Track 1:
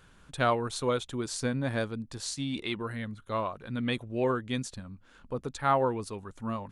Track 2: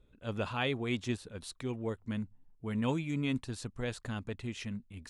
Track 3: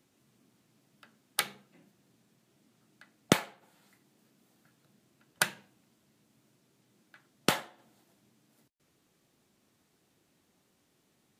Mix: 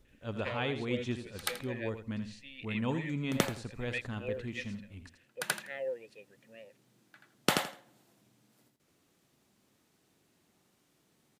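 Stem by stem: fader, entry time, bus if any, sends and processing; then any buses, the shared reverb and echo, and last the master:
−4.5 dB, 0.05 s, no send, no echo send, formant filter e; high shelf with overshoot 1,600 Hz +8.5 dB, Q 3
−1.5 dB, 0.00 s, no send, echo send −9.5 dB, high-shelf EQ 7,800 Hz −12 dB
−1.0 dB, 0.00 s, no send, echo send −4 dB, automatic ducking −21 dB, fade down 0.20 s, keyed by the second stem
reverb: not used
echo: repeating echo 82 ms, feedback 20%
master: no processing

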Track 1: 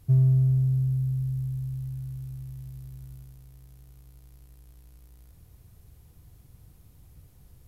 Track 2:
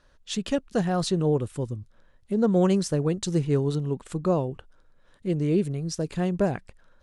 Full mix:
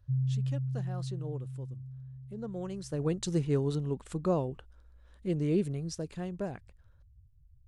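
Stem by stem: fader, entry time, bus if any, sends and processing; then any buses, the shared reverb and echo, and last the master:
−5.5 dB, 0.00 s, no send, expanding power law on the bin magnitudes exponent 2.1; phaser with its sweep stopped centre 560 Hz, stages 4
0:02.76 −17.5 dB → 0:03.06 −5 dB → 0:05.77 −5 dB → 0:06.27 −12 dB, 0.00 s, no send, no processing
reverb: not used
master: no processing

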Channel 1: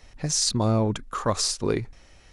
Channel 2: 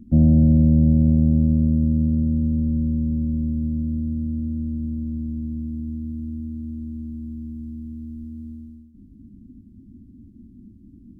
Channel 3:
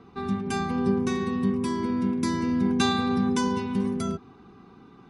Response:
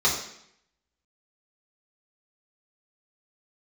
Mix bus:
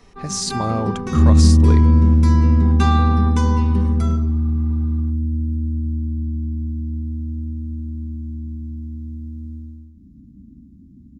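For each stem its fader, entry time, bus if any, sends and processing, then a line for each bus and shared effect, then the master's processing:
−1.0 dB, 0.00 s, no send, no processing
−3.0 dB, 1.00 s, send −9.5 dB, flat-topped bell 520 Hz −13 dB 1 octave
−5.0 dB, 0.00 s, send −19 dB, high-shelf EQ 5,200 Hz −7 dB; automatic gain control gain up to 7.5 dB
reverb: on, RT60 0.70 s, pre-delay 3 ms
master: no processing

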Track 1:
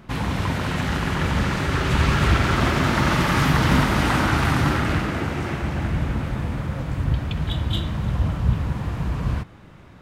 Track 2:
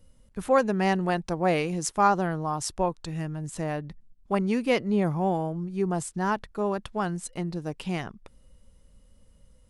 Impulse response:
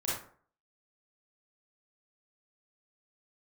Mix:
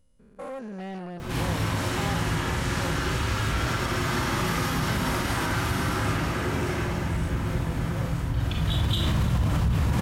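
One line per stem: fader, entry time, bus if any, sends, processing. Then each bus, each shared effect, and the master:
−4.5 dB, 1.20 s, send −12.5 dB, high-shelf EQ 4,600 Hz +11.5 dB; pitch vibrato 0.54 Hz 17 cents; envelope flattener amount 70%; automatic ducking −22 dB, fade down 1.80 s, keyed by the second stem
−6.0 dB, 0.00 s, no send, spectrum averaged block by block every 200 ms; soft clipping −25 dBFS, distortion −11 dB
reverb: on, RT60 0.50 s, pre-delay 27 ms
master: brickwall limiter −16 dBFS, peak gain reduction 9 dB

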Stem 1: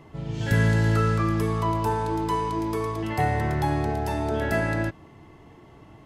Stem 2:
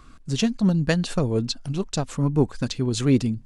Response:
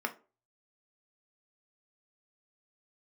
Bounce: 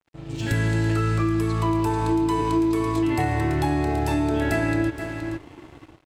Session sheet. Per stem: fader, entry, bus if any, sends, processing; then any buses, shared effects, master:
−4.5 dB, 0.00 s, no send, echo send −12.5 dB, low-shelf EQ 290 Hz +2 dB; automatic gain control gain up to 12 dB
−11.0 dB, 0.00 s, no send, no echo send, expander for the loud parts 1.5 to 1, over −29 dBFS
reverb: not used
echo: single-tap delay 472 ms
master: thirty-one-band graphic EQ 200 Hz −12 dB, 315 Hz +11 dB, 500 Hz −5 dB, 2,500 Hz +6 dB, 4,000 Hz +4 dB, 8,000 Hz +7 dB; dead-zone distortion −43.5 dBFS; downward compressor, threshold −19 dBFS, peak gain reduction 8.5 dB

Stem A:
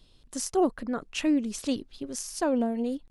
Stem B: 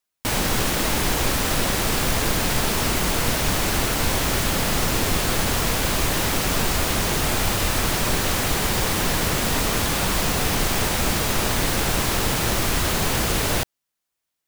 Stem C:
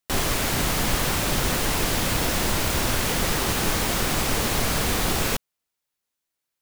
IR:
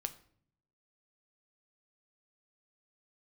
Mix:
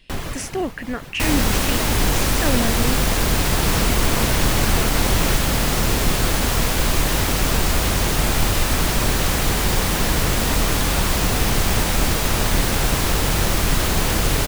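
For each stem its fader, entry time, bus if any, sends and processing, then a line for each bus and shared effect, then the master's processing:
+3.0 dB, 0.00 s, no send, flat-topped bell 2,200 Hz +15 dB 1 octave; brickwall limiter −19.5 dBFS, peak gain reduction 11.5 dB
+1.0 dB, 0.95 s, no send, sub-octave generator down 2 octaves, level +4 dB
+2.0 dB, 0.00 s, no send, bass and treble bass +5 dB, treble −6 dB; reverb reduction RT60 0.51 s; amplitude modulation by smooth noise, depth 65%; automatic ducking −14 dB, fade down 0.75 s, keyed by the first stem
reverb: not used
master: no processing

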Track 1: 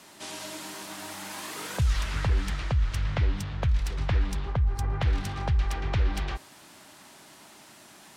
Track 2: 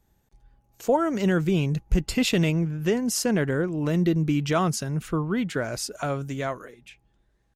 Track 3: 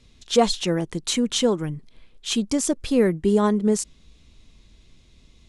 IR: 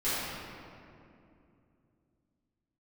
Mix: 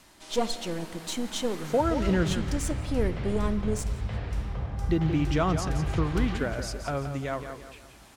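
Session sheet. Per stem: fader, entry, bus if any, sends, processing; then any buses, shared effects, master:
−6.5 dB, 0.00 s, send −10 dB, no echo send, automatic ducking −12 dB, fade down 0.40 s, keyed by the third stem
−3.0 dB, 0.85 s, muted 0:02.33–0:04.89, no send, echo send −9 dB, high-shelf EQ 8,200 Hz −12 dB
−7.5 dB, 0.00 s, send −22.5 dB, echo send −22 dB, gain on one half-wave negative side −7 dB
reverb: on, RT60 2.6 s, pre-delay 4 ms
echo: repeating echo 173 ms, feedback 39%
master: no processing

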